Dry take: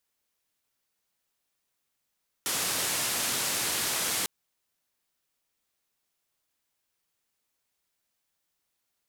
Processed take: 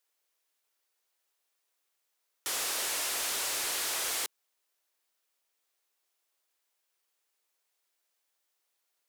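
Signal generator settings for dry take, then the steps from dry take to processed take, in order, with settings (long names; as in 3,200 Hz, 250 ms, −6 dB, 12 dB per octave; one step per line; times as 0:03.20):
band-limited noise 93–12,000 Hz, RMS −29.5 dBFS 1.80 s
high-pass filter 350 Hz 24 dB per octave
soft clipping −28 dBFS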